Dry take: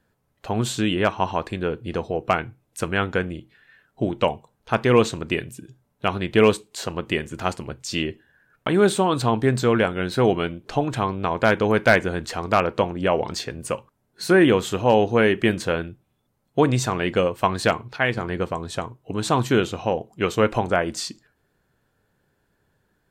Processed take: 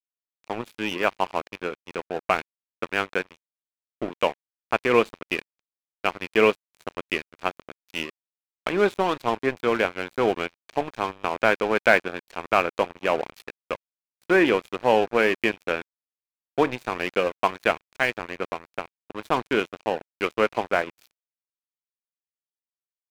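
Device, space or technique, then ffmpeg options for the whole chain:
pocket radio on a weak battery: -af "highpass=310,lowpass=3.4k,aeval=exprs='sgn(val(0))*max(abs(val(0))-0.0316,0)':c=same,equalizer=f=2.4k:t=o:w=0.23:g=6"

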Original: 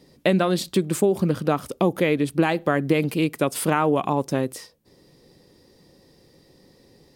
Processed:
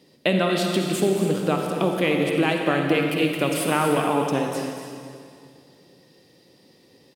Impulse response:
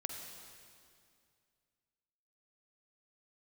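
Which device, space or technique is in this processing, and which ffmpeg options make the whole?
stadium PA: -filter_complex "[0:a]highpass=140,equalizer=f=2.9k:t=o:w=0.62:g=7,aecho=1:1:236.2|288.6:0.282|0.251[a];[1:a]atrim=start_sample=2205[b];[a][b]afir=irnorm=-1:irlink=0"

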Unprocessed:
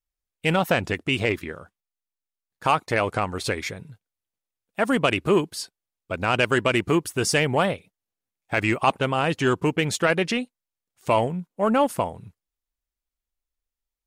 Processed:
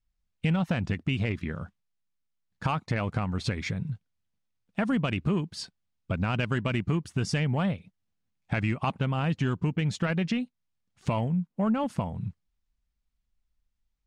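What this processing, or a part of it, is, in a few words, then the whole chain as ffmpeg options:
jukebox: -af "lowpass=5.7k,lowshelf=f=270:t=q:w=1.5:g=9.5,acompressor=threshold=-30dB:ratio=3,volume=2dB"

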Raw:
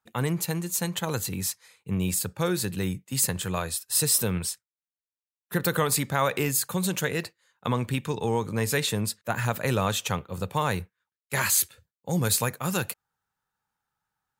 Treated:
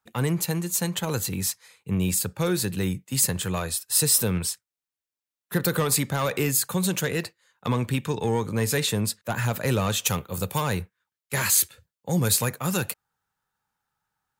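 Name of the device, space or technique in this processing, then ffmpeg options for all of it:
one-band saturation: -filter_complex "[0:a]acrossover=split=410|3900[a][b][c];[b]asoftclip=type=tanh:threshold=-25.5dB[d];[a][d][c]amix=inputs=3:normalize=0,asplit=3[e][f][g];[e]afade=t=out:st=10.04:d=0.02[h];[f]aemphasis=mode=production:type=50kf,afade=t=in:st=10.04:d=0.02,afade=t=out:st=10.6:d=0.02[i];[g]afade=t=in:st=10.6:d=0.02[j];[h][i][j]amix=inputs=3:normalize=0,volume=2.5dB"

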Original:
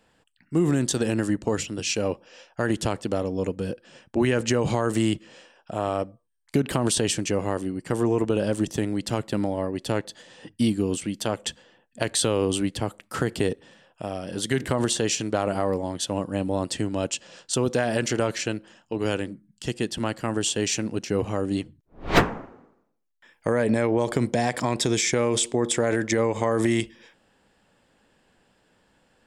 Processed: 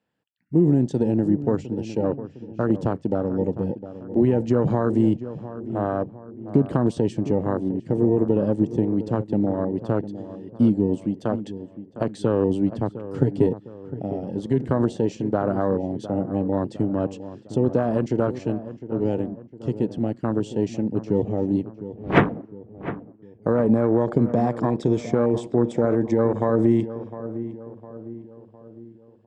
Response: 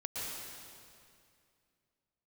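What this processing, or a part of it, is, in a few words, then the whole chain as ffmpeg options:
over-cleaned archive recording: -filter_complex "[0:a]highpass=120,lowpass=6.2k,lowshelf=f=390:g=9,afwtdn=0.0562,asettb=1/sr,asplit=3[a][b][c];[a]atrim=end=12.994[d];[b]atrim=start=12.99:end=13.47,asetpts=PTS-STARTPTS,afade=t=in:d=0.004:c=qsin,afade=t=out:st=0.476:d=0.004:c=qsin,aecho=1:1:7.2:0.69,atrim=end_sample=21168[e];[c]atrim=start=13.466[f];[d][e]acrossfade=d=0.004:c1=hsin:c2=qsin[g];[g][f]acrossfade=d=0.004:c1=qsin:c2=hsin,equalizer=f=1.9k:w=1.5:g=2,asplit=2[h][i];[i]adelay=707,lowpass=f=1.6k:p=1,volume=-13dB,asplit=2[j][k];[k]adelay=707,lowpass=f=1.6k:p=1,volume=0.49,asplit=2[l][m];[m]adelay=707,lowpass=f=1.6k:p=1,volume=0.49,asplit=2[n][o];[o]adelay=707,lowpass=f=1.6k:p=1,volume=0.49,asplit=2[p][q];[q]adelay=707,lowpass=f=1.6k:p=1,volume=0.49[r];[h][j][l][n][p][r]amix=inputs=6:normalize=0,volume=-1.5dB"

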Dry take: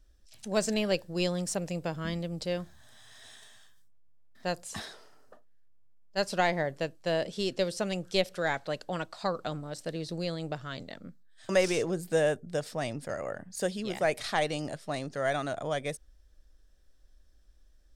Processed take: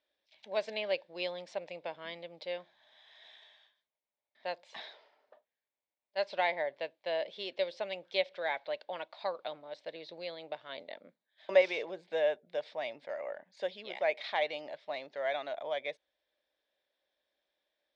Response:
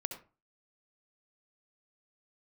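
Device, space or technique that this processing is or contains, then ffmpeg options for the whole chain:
phone earpiece: -filter_complex "[0:a]highpass=490,equalizer=f=590:t=q:w=4:g=7,equalizer=f=910:t=q:w=4:g=6,equalizer=f=1.3k:t=q:w=4:g=-6,equalizer=f=2.2k:t=q:w=4:g=9,equalizer=f=3.6k:t=q:w=4:g=7,lowpass=f=4.1k:w=0.5412,lowpass=f=4.1k:w=1.3066,asettb=1/sr,asplit=3[a][b][c];[a]atrim=end=10.694[d];[b]atrim=start=10.69:end=11.62,asetpts=PTS-STARTPTS,afade=t=in:d=0.004:c=qsin,afade=t=out:st=0.926:d=0.004:c=qsin,equalizer=f=380:t=o:w=2.6:g=5.5[e];[c]atrim=start=11.616[f];[d][e]acrossfade=d=0.004:c1=hsin:c2=qsin[g];[g][f]acrossfade=d=0.004:c1=qsin:c2=hsin,volume=-7dB"

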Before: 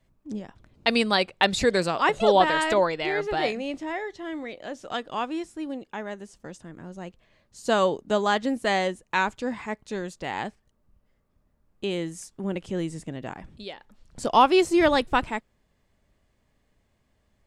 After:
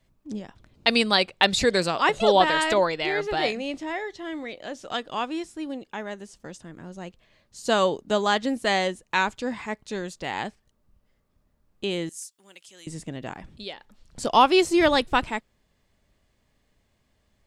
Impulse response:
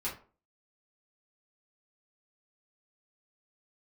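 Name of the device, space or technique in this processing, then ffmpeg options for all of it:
presence and air boost: -filter_complex "[0:a]equalizer=f=4.1k:t=o:w=1.6:g=4,highshelf=f=9.4k:g=3.5,asettb=1/sr,asplit=3[a][b][c];[a]atrim=end=12.094[d];[b]atrim=start=12.09:end=12.87,asetpts=PTS-STARTPTS,afade=t=in:d=0.004:c=qsin,afade=t=out:st=0.776:d=0.004:c=qsin,aderivative[e];[c]atrim=start=12.866[f];[d][e]acrossfade=d=0.004:c1=hsin:c2=qsin[g];[g][f]acrossfade=d=0.004:c1=qsin:c2=hsin"

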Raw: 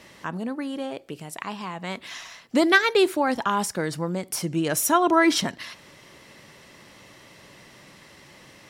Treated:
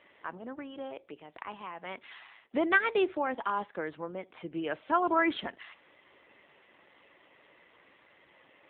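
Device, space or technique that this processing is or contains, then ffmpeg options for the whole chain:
telephone: -filter_complex "[0:a]asettb=1/sr,asplit=3[a][b][c];[a]atrim=end=4.784[d];[b]atrim=start=4.78:end=5.19,asetpts=PTS-STARTPTS,afade=t=in:d=0.004:c=qsin,afade=t=out:st=0.406:d=0.004:c=qsin,highpass=150[e];[c]atrim=start=5.186[f];[d][e]acrossfade=d=0.004:c1=hsin:c2=qsin[g];[g][f]acrossfade=d=0.004:c1=qsin:c2=hsin,highpass=330,lowpass=3.6k,volume=-6dB" -ar 8000 -c:a libopencore_amrnb -b:a 7400

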